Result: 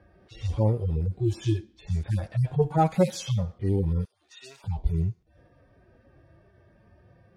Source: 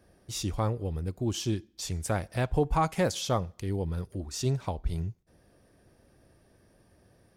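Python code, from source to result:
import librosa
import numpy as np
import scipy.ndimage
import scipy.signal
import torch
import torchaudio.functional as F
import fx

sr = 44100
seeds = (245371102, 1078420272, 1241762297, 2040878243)

y = fx.hpss_only(x, sr, part='harmonic')
y = fx.env_lowpass(y, sr, base_hz=2400.0, full_db=-27.5)
y = fx.highpass(y, sr, hz=1500.0, slope=12, at=(4.05, 4.64))
y = F.gain(torch.from_numpy(y), 7.0).numpy()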